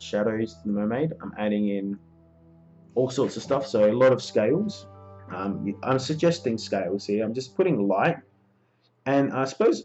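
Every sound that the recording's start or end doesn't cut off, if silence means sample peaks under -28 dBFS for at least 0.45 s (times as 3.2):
2.97–4.73
5.32–8.13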